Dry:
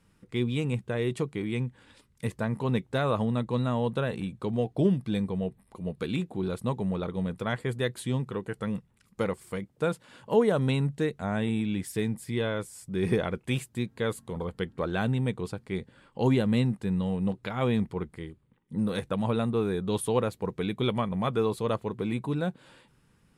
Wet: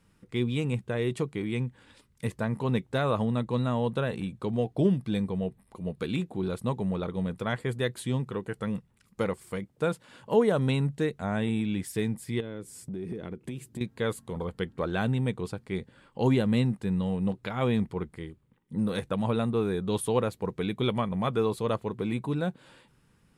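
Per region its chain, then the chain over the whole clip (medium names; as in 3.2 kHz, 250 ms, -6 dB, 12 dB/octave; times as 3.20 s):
12.40–13.81 s: high-pass 130 Hz 6 dB/octave + resonant low shelf 500 Hz +9 dB, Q 1.5 + compression, threshold -34 dBFS
whole clip: none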